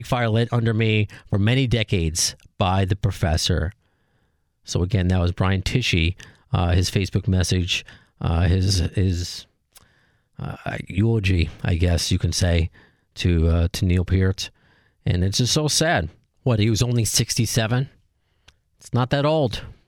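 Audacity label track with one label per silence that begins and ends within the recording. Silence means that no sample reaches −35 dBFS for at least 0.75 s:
3.720000	4.680000	silence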